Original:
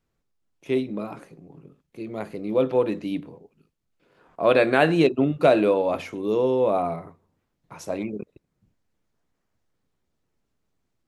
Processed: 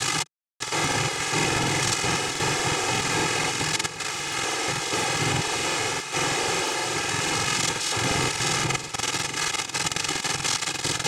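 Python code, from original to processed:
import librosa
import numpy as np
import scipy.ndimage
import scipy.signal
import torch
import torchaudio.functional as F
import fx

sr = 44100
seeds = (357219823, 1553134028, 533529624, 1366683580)

y = np.sign(x) * np.sqrt(np.mean(np.square(x)))
y = scipy.signal.sosfilt(scipy.signal.butter(6, 5200.0, 'lowpass', fs=sr, output='sos'), y)
y = fx.tilt_shelf(y, sr, db=-9.0, hz=1100.0)
y = fx.over_compress(y, sr, threshold_db=-30.0, ratio=-0.5)
y = fx.noise_vocoder(y, sr, seeds[0], bands=4)
y = fx.peak_eq(y, sr, hz=160.0, db=9.5, octaves=0.81)
y = y + 0.87 * np.pad(y, (int(2.4 * sr / 1000.0), 0))[:len(y)]
y = fx.echo_feedback(y, sr, ms=586, feedback_pct=53, wet_db=-12.5)
y = fx.buffer_crackle(y, sr, first_s=0.51, period_s=0.12, block=2048, kind='repeat')
y = y * librosa.db_to_amplitude(3.0)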